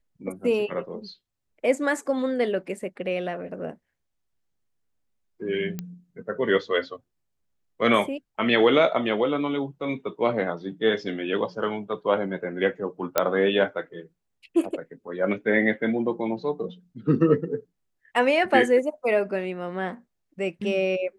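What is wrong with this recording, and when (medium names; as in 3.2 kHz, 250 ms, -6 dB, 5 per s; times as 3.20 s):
5.79 s: pop -17 dBFS
13.18 s: pop -5 dBFS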